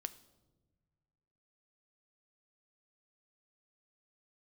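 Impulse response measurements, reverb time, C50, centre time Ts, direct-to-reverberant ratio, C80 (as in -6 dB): no single decay rate, 17.0 dB, 4 ms, 11.5 dB, 19.0 dB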